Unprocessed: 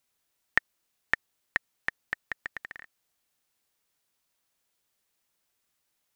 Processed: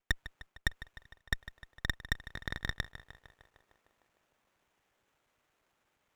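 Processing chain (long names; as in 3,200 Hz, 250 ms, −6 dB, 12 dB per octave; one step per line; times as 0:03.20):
slices reordered back to front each 117 ms, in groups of 5
meter weighting curve A
reversed playback
downward compressor 10 to 1, threshold −31 dBFS, peak gain reduction 15 dB
reversed playback
tilt shelving filter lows +4.5 dB, about 680 Hz
in parallel at −8 dB: wrap-around overflow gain 30 dB
on the sum: feedback echo with a low-pass in the loop 152 ms, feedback 80%, low-pass 2,000 Hz, level −12 dB
windowed peak hold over 9 samples
level +6.5 dB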